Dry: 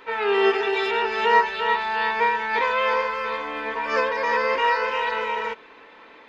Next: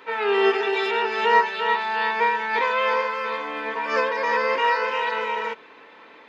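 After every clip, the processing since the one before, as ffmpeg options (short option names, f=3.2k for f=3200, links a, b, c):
-af "highpass=f=94:w=0.5412,highpass=f=94:w=1.3066"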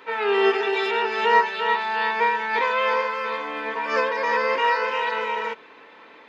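-af anull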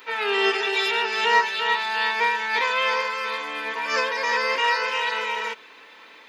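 -af "crystalizer=i=7:c=0,volume=-5.5dB"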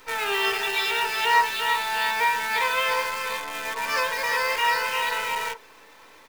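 -filter_complex "[0:a]acrossover=split=420|1400[a][b][c];[a]acompressor=threshold=-47dB:ratio=6[d];[b]asplit=2[e][f];[f]adelay=35,volume=-3.5dB[g];[e][g]amix=inputs=2:normalize=0[h];[c]acrusher=bits=6:dc=4:mix=0:aa=0.000001[i];[d][h][i]amix=inputs=3:normalize=0,volume=-1.5dB"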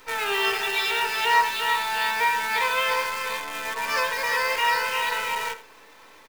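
-af "aecho=1:1:81:0.178"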